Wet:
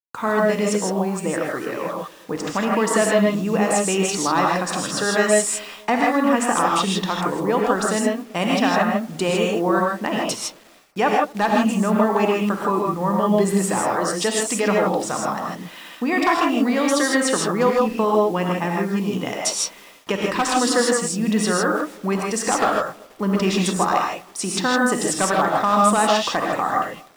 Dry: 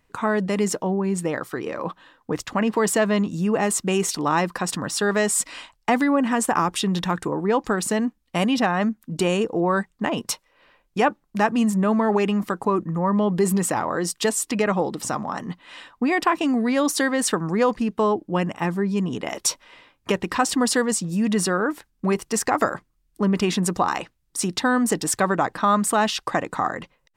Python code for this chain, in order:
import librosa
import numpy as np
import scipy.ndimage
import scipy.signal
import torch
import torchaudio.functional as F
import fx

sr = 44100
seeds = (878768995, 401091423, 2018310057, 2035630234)

p1 = x + fx.echo_banded(x, sr, ms=240, feedback_pct=49, hz=350.0, wet_db=-21.0, dry=0)
p2 = 10.0 ** (-10.0 / 20.0) * (np.abs((p1 / 10.0 ** (-10.0 / 20.0) + 3.0) % 4.0 - 2.0) - 1.0)
p3 = scipy.signal.sosfilt(scipy.signal.butter(2, 9000.0, 'lowpass', fs=sr, output='sos'), p2)
p4 = fx.quant_dither(p3, sr, seeds[0], bits=8, dither='none')
p5 = fx.peak_eq(p4, sr, hz=68.0, db=-7.5, octaves=2.7)
y = fx.rev_gated(p5, sr, seeds[1], gate_ms=180, shape='rising', drr_db=-1.5)